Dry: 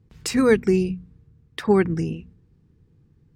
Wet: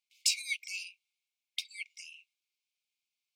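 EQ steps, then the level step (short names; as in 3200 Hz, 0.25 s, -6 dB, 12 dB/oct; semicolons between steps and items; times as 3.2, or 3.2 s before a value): dynamic EQ 4800 Hz, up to +5 dB, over -44 dBFS, Q 0.97; brick-wall FIR high-pass 2100 Hz; -2.0 dB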